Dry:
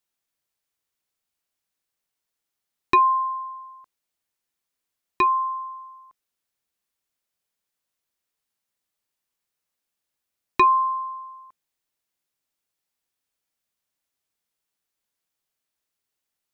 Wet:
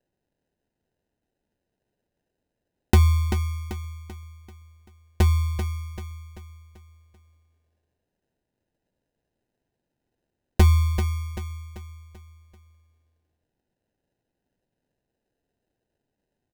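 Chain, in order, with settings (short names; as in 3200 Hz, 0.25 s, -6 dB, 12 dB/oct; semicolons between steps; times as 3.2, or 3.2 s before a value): sample-and-hold 39×; notch 1300 Hz, Q 5.6; feedback echo 0.388 s, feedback 44%, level -8 dB; gain +1.5 dB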